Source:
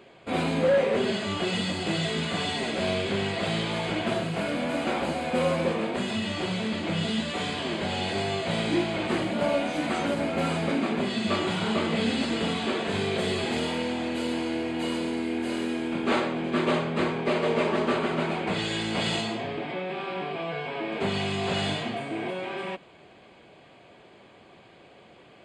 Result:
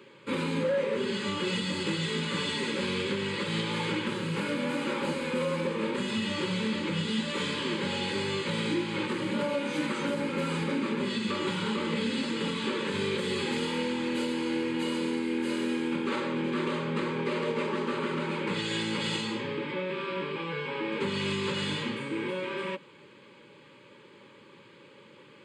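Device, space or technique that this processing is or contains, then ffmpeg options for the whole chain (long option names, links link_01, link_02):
PA system with an anti-feedback notch: -af "highpass=frequency=110:width=0.5412,highpass=frequency=110:width=1.3066,asuperstop=centerf=700:order=20:qfactor=3.2,alimiter=limit=-20.5dB:level=0:latency=1:release=205"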